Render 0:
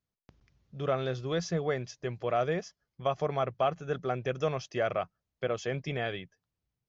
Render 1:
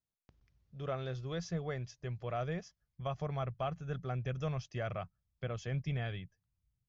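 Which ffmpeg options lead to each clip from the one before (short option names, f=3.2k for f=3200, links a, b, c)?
-af "asubboost=boost=7:cutoff=140,volume=-8dB"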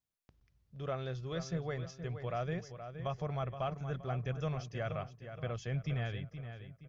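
-filter_complex "[0:a]asplit=2[a][b];[b]adelay=471,lowpass=f=3.9k:p=1,volume=-9.5dB,asplit=2[c][d];[d]adelay=471,lowpass=f=3.9k:p=1,volume=0.4,asplit=2[e][f];[f]adelay=471,lowpass=f=3.9k:p=1,volume=0.4,asplit=2[g][h];[h]adelay=471,lowpass=f=3.9k:p=1,volume=0.4[i];[a][c][e][g][i]amix=inputs=5:normalize=0"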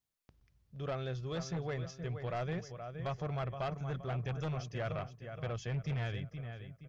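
-af "aeval=exprs='0.0596*(cos(1*acos(clip(val(0)/0.0596,-1,1)))-cos(1*PI/2))+0.000841*(cos(7*acos(clip(val(0)/0.0596,-1,1)))-cos(7*PI/2))':c=same,aeval=exprs='0.0562*sin(PI/2*1.78*val(0)/0.0562)':c=same,volume=-6.5dB"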